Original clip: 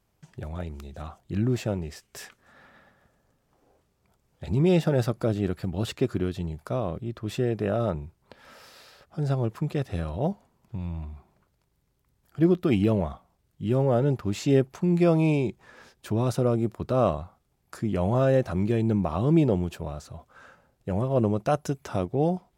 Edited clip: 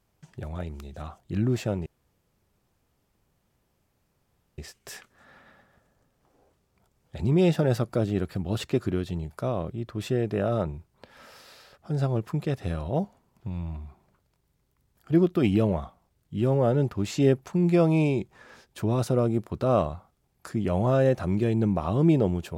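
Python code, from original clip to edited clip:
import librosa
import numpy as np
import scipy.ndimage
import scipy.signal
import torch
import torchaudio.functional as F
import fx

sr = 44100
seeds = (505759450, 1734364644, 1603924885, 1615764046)

y = fx.edit(x, sr, fx.insert_room_tone(at_s=1.86, length_s=2.72), tone=tone)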